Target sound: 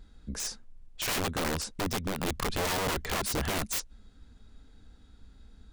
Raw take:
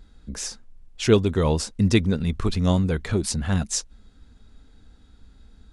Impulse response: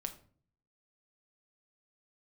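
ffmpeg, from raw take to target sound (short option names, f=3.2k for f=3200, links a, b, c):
-filter_complex "[0:a]asettb=1/sr,asplit=3[a][b][c];[a]atrim=end=1.244[d];[b]atrim=start=1.24:end=2.58,asetpts=PTS-STARTPTS,afade=t=in:d=0.004:c=qsin,afade=t=out:st=1.336:d=0.004:c=qsin,acompressor=threshold=-23dB:ratio=8[e];[c]atrim=start=2.576[f];[d][e]acrossfade=d=0.004:c1=hsin:c2=qsin[g];[g][f]acrossfade=d=0.004:c1=qsin:c2=hsin,aeval=exprs='(mod(12.6*val(0)+1,2)-1)/12.6':c=same,volume=-3dB"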